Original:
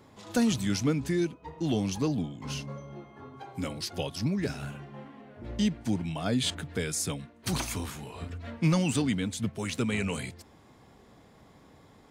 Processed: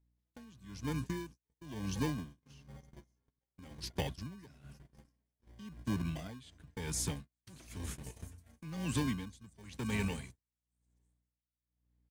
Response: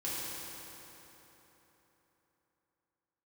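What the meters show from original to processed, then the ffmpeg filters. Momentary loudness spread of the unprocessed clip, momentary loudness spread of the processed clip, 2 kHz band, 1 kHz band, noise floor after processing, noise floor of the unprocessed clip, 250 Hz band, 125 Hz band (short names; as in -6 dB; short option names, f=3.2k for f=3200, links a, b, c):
16 LU, 20 LU, -9.0 dB, -8.5 dB, under -85 dBFS, -57 dBFS, -11.5 dB, -9.0 dB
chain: -filter_complex "[0:a]acrossover=split=140|1100|5800[a][b][c][d];[b]acrusher=samples=33:mix=1:aa=0.000001[e];[d]aecho=1:1:570|912|1117|1240|1314:0.631|0.398|0.251|0.158|0.1[f];[a][e][c][f]amix=inputs=4:normalize=0,dynaudnorm=f=140:g=21:m=6dB,highshelf=f=4.9k:g=-3,aeval=exprs='val(0)+0.0126*(sin(2*PI*60*n/s)+sin(2*PI*2*60*n/s)/2+sin(2*PI*3*60*n/s)/3+sin(2*PI*4*60*n/s)/4+sin(2*PI*5*60*n/s)/5)':c=same,lowshelf=f=150:g=6,agate=range=-37dB:threshold=-28dB:ratio=16:detection=peak,acompressor=threshold=-35dB:ratio=2,aeval=exprs='val(0)*pow(10,-22*(0.5-0.5*cos(2*PI*1*n/s))/20)':c=same,volume=-2.5dB"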